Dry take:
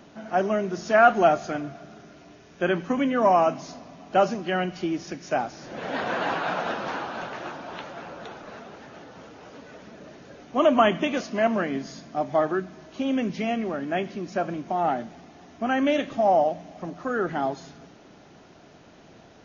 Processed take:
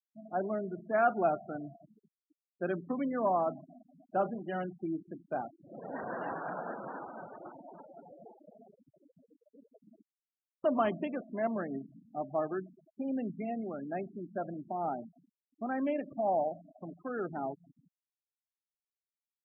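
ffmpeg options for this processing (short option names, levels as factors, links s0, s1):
-filter_complex "[0:a]asettb=1/sr,asplit=3[s0][s1][s2];[s0]atrim=end=3.924[s3];[s1]atrim=start=3.92:end=5.56,asetpts=PTS-STARTPTS,afade=t=in:d=0.004:c=qsin,afade=t=out:st=1.636:d=0.004:c=qsin,asplit=2[s4][s5];[s5]adelay=31,volume=0.282[s6];[s4][s6]amix=inputs=2:normalize=0,atrim=end_sample=72324[s7];[s2]atrim=start=5.556[s8];[s3][s7]acrossfade=d=0.004:c1=hsin:c2=qsin[s9];[s9][s8]acrossfade=d=0.004:c1=qsin:c2=hsin,asplit=3[s10][s11][s12];[s10]atrim=end=10.02,asetpts=PTS-STARTPTS,afade=t=out:st=10.016:d=0.004:c=hsin[s13];[s11]atrim=start=10.02:end=10.64,asetpts=PTS-STARTPTS,volume=0[s14];[s12]atrim=start=10.64,asetpts=PTS-STARTPTS,afade=t=in:d=0.004:c=hsin[s15];[s13][s14][s15]concat=n=3:v=0:a=1,lowpass=f=1300:p=1,afftfilt=real='re*gte(hypot(re,im),0.0355)':imag='im*gte(hypot(re,im),0.0355)':win_size=1024:overlap=0.75,volume=0.355"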